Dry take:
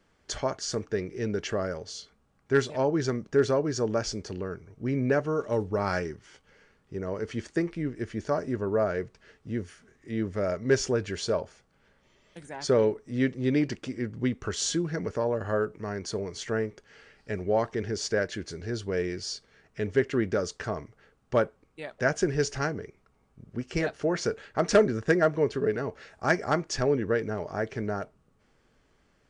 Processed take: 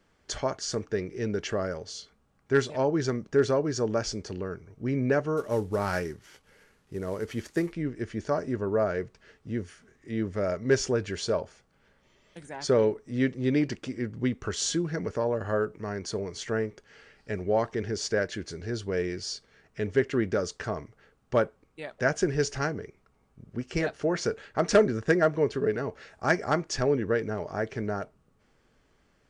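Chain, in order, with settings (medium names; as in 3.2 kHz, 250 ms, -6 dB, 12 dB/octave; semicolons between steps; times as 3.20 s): 5.37–7.73 s: CVSD coder 64 kbps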